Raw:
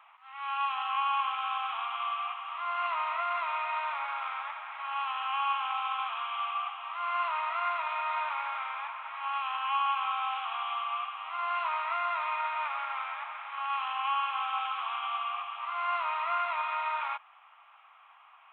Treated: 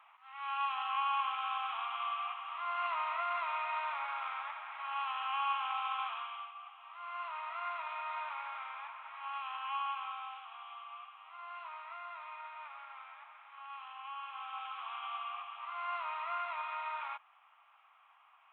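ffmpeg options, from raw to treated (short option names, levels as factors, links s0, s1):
-af "volume=4.22,afade=t=out:st=6.06:d=0.47:silence=0.223872,afade=t=in:st=6.53:d=1.23:silence=0.354813,afade=t=out:st=9.81:d=0.65:silence=0.446684,afade=t=in:st=14.12:d=0.96:silence=0.421697"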